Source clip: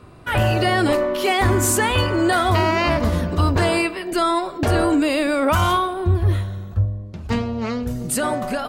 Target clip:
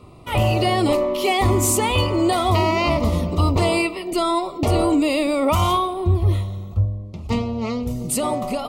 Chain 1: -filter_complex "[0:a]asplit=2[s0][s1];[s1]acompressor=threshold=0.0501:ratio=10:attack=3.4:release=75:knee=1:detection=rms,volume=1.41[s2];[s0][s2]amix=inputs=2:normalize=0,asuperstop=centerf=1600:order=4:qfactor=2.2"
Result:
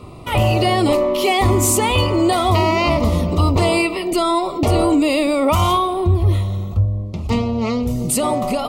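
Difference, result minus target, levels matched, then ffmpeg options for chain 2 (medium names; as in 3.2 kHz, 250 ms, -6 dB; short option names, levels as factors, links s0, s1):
compression: peak gain reduction +14 dB
-af "asuperstop=centerf=1600:order=4:qfactor=2.2"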